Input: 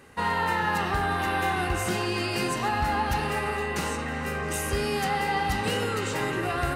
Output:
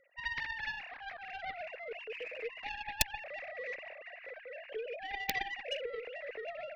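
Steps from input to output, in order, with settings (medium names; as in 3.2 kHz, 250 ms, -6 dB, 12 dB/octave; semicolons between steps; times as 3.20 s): formants replaced by sine waves; 2.16–2.89 s: comb 6.3 ms, depth 74%; Chebyshev shaper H 2 -22 dB, 3 -13 dB, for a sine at -10.5 dBFS; integer overflow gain 12.5 dB; high-order bell 1.1 kHz -15.5 dB 1.1 oct; trim -1.5 dB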